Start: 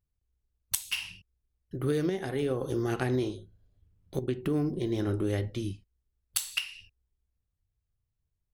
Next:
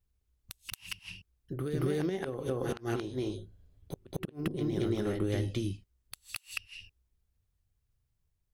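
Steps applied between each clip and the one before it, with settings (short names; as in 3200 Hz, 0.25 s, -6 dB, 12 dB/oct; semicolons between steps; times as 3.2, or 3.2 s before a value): compressor 16:1, threshold -30 dBFS, peak gain reduction 9 dB; flipped gate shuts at -23 dBFS, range -32 dB; reverse echo 0.226 s -4 dB; gain +2.5 dB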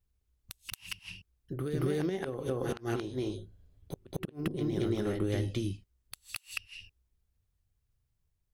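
nothing audible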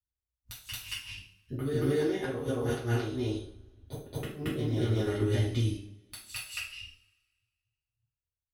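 spectral noise reduction 22 dB; notch comb 170 Hz; two-slope reverb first 0.46 s, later 1.7 s, from -24 dB, DRR -6 dB; gain -2.5 dB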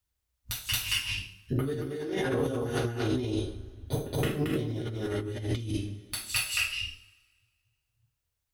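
negative-ratio compressor -36 dBFS, ratio -1; gain +5.5 dB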